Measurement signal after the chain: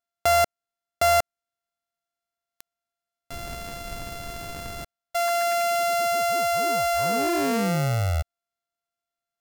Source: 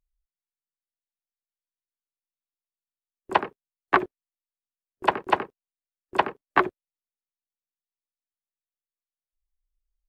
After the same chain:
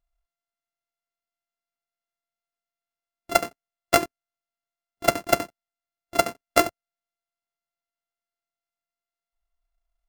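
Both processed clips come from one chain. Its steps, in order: sorted samples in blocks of 64 samples; dynamic bell 3.5 kHz, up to -5 dB, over -45 dBFS, Q 3.7; trim +1.5 dB

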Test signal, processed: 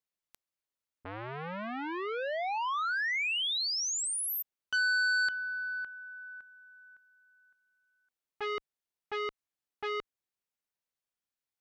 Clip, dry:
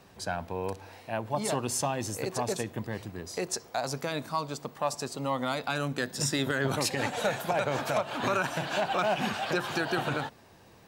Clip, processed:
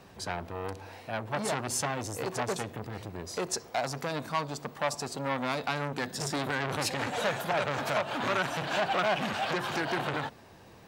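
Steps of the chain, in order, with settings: treble shelf 5 kHz -4 dB; transformer saturation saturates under 1.8 kHz; trim +3 dB

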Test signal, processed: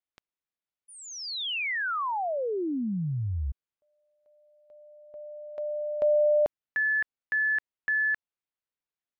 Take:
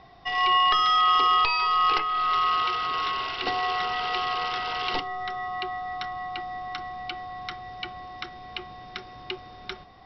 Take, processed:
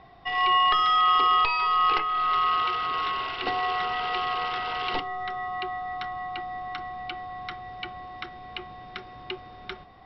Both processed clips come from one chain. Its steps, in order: low-pass 3.5 kHz 12 dB/octave

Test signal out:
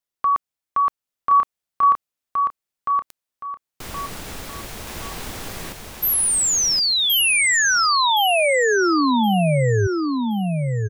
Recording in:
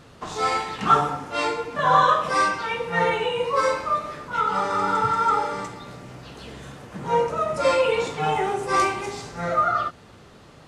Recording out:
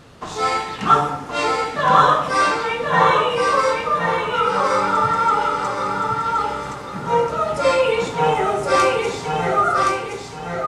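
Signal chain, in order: feedback delay 1070 ms, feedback 30%, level -3 dB; trim +3 dB

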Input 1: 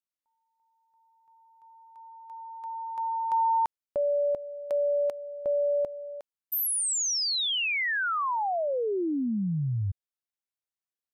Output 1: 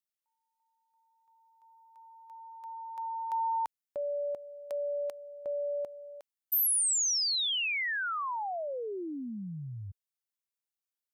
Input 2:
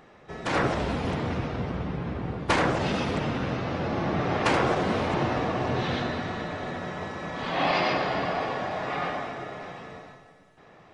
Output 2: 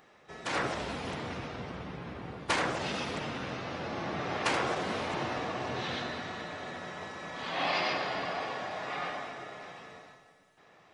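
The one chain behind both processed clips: tilt EQ +2 dB/octave; trim -6 dB

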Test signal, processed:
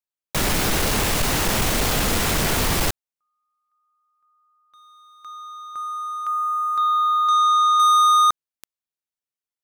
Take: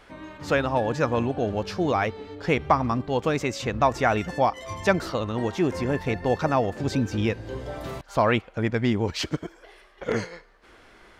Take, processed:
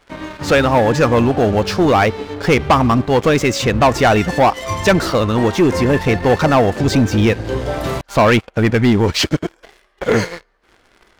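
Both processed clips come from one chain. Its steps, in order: waveshaping leveller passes 3; trim +2 dB

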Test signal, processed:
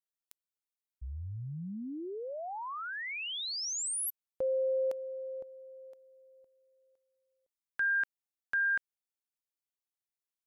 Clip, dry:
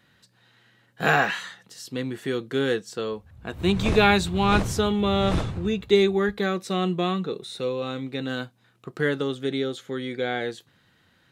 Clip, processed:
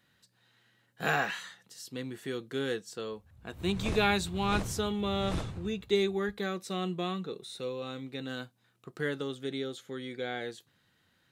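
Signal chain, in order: treble shelf 5.2 kHz +6.5 dB; trim -9 dB

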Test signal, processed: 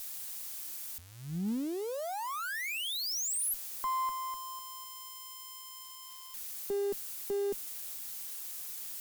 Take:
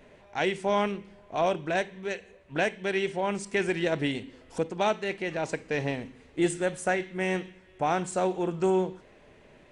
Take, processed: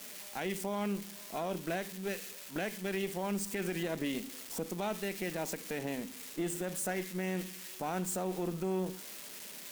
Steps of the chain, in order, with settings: zero-crossing glitches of -27.5 dBFS; resonant low shelf 140 Hz -10.5 dB, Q 3; peak limiter -21 dBFS; modulation noise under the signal 27 dB; Chebyshev shaper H 2 -18 dB, 6 -29 dB, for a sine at -20.5 dBFS; trim -6 dB

